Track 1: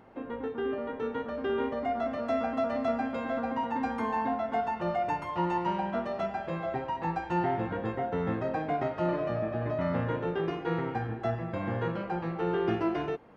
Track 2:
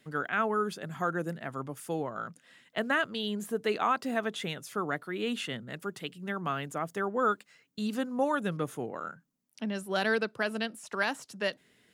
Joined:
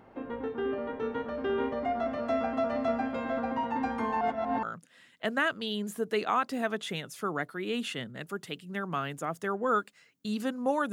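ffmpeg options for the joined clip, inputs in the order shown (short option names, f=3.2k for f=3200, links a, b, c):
-filter_complex "[0:a]apad=whole_dur=10.92,atrim=end=10.92,asplit=2[a][b];[a]atrim=end=4.212[c];[b]atrim=start=4.208:end=4.632,asetpts=PTS-STARTPTS,areverse[d];[1:a]atrim=start=2.158:end=8.45[e];[c][d]acrossfade=d=0.004:c1=hsin:c2=hsin[f];[f][e]acrossfade=d=0.004:c1=hsin:c2=hsin"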